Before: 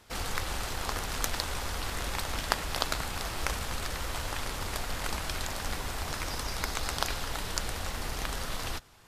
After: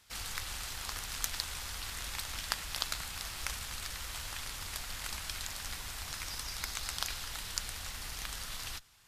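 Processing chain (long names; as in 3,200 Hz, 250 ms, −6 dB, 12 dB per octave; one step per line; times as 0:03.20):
guitar amp tone stack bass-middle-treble 5-5-5
level +4.5 dB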